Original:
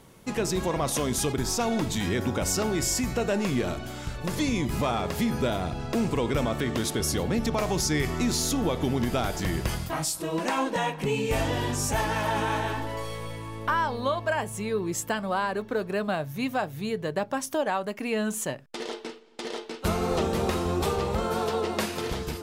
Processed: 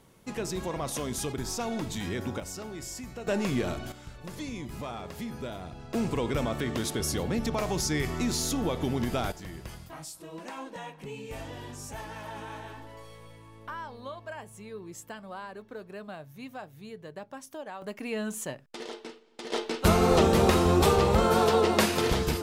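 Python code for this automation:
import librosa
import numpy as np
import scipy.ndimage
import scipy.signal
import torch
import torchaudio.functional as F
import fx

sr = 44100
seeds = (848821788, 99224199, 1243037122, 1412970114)

y = fx.gain(x, sr, db=fx.steps((0.0, -6.0), (2.4, -13.0), (3.27, -2.0), (3.92, -11.0), (5.94, -3.0), (9.32, -13.5), (17.82, -5.0), (19.52, 5.0)))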